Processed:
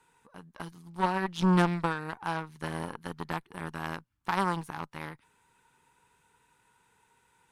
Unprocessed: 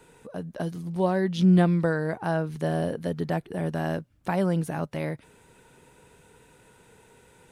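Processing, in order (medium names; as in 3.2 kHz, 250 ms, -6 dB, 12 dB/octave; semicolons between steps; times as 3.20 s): Chebyshev shaper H 2 -7 dB, 7 -20 dB, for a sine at -10.5 dBFS; resonant low shelf 760 Hz -6 dB, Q 3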